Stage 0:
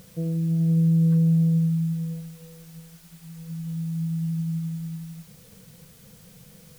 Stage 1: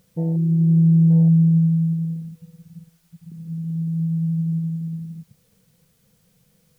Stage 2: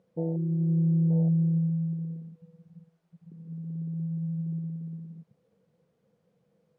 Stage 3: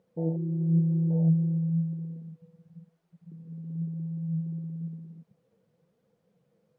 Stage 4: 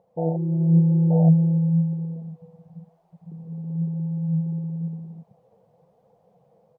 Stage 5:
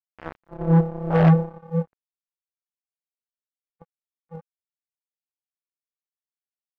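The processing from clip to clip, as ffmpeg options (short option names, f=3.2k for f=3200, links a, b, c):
-af "afwtdn=0.0355,volume=5dB"
-af "bandpass=f=480:t=q:w=1.1:csg=0"
-af "flanger=delay=2.1:depth=7.6:regen=61:speed=0.98:shape=triangular,volume=4dB"
-af "firequalizer=gain_entry='entry(120,0);entry(270,-7);entry(740,13);entry(1400,-8)':delay=0.05:min_phase=1,dynaudnorm=f=140:g=5:m=5dB,volume=4dB"
-af "aphaser=in_gain=1:out_gain=1:delay=1.1:decay=0.33:speed=1.6:type=sinusoidal,highpass=180,acrusher=bits=2:mix=0:aa=0.5"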